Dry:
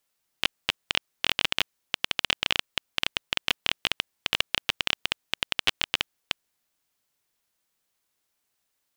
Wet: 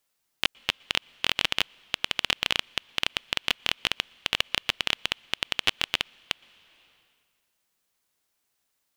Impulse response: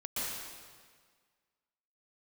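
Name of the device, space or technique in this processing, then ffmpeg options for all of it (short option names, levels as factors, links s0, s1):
compressed reverb return: -filter_complex "[0:a]asplit=2[s0][s1];[1:a]atrim=start_sample=2205[s2];[s1][s2]afir=irnorm=-1:irlink=0,acompressor=threshold=0.01:ratio=6,volume=0.168[s3];[s0][s3]amix=inputs=2:normalize=0"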